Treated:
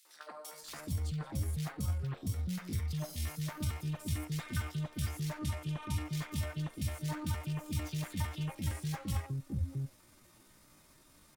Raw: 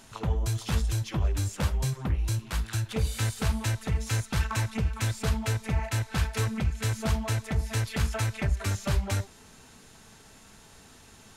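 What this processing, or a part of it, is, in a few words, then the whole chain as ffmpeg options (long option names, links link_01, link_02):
chipmunk voice: -filter_complex "[0:a]asettb=1/sr,asplit=3[link_01][link_02][link_03];[link_01]atrim=end=5.414[link_04];[link_02]atrim=start=5.41:end=6.05,asetpts=PTS-STARTPTS,afade=type=in:duration=0.004:curve=qsin,afade=type=out:start_time=0.636:duration=0.004:curve=qsin,lowpass=frequency=9900:width=0.5412,lowpass=frequency=9900:width=1.3066[link_05];[link_03]atrim=start=6.046[link_06];[link_04][link_05]acrossfade=duration=0.004:curve1=hsin:curve2=qsin[link_07];[link_07][link_06]acrossfade=duration=0.004:curve1=qsin:curve2=hsin,acrossover=split=310|1800[link_08][link_09][link_10];[link_09]adelay=70[link_11];[link_08]adelay=650[link_12];[link_12][link_11][link_10]amix=inputs=3:normalize=0,asetrate=60591,aresample=44100,atempo=0.727827,volume=-8.5dB"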